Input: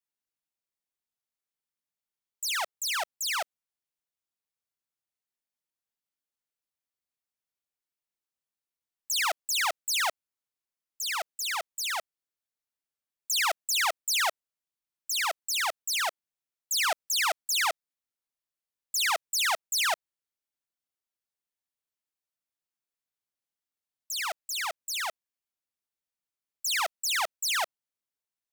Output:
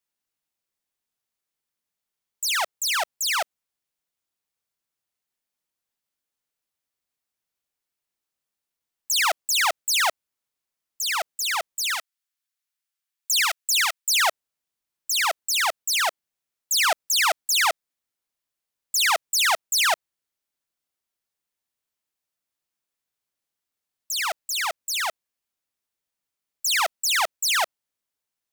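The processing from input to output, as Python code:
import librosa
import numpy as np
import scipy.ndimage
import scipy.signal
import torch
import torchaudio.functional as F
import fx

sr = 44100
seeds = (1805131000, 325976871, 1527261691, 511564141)

y = fx.highpass(x, sr, hz=1300.0, slope=12, at=(11.94, 14.1))
y = F.gain(torch.from_numpy(y), 6.0).numpy()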